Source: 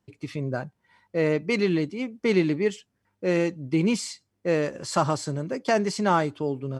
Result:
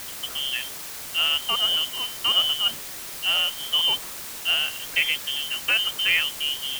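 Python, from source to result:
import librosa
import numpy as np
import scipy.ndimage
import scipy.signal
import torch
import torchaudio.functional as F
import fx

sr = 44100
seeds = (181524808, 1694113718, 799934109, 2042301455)

y = fx.freq_invert(x, sr, carrier_hz=3300)
y = fx.quant_dither(y, sr, seeds[0], bits=6, dither='triangular')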